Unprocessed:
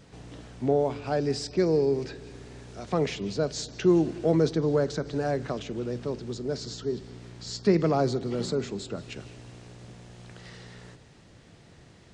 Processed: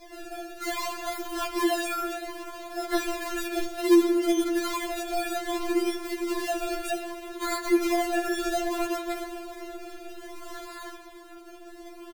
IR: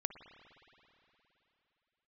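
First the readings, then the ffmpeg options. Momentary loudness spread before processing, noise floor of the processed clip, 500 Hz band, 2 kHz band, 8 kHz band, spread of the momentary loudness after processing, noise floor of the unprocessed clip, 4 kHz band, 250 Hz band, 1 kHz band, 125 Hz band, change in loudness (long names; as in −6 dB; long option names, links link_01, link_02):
22 LU, −46 dBFS, −2.5 dB, +8.0 dB, +5.5 dB, 19 LU, −54 dBFS, +3.0 dB, +1.5 dB, +5.5 dB, below −25 dB, −0.5 dB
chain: -filter_complex "[0:a]highpass=frequency=180:width=0.5412,highpass=frequency=180:width=1.3066,highshelf=frequency=7400:gain=12,acompressor=threshold=-29dB:ratio=6,acrusher=samples=30:mix=1:aa=0.000001:lfo=1:lforange=30:lforate=0.63,asoftclip=type=tanh:threshold=-31.5dB,aecho=1:1:120:0.141,asplit=2[link_01][link_02];[1:a]atrim=start_sample=2205,asetrate=37485,aresample=44100[link_03];[link_02][link_03]afir=irnorm=-1:irlink=0,volume=7dB[link_04];[link_01][link_04]amix=inputs=2:normalize=0,afftfilt=real='re*4*eq(mod(b,16),0)':imag='im*4*eq(mod(b,16),0)':win_size=2048:overlap=0.75,volume=1.5dB"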